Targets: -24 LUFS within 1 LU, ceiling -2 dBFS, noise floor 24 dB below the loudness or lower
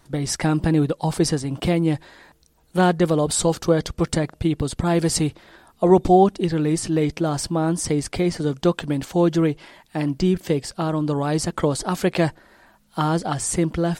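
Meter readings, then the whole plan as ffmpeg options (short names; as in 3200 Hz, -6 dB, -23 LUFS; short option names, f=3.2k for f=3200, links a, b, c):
loudness -21.5 LUFS; peak -4.0 dBFS; loudness target -24.0 LUFS
-> -af "volume=-2.5dB"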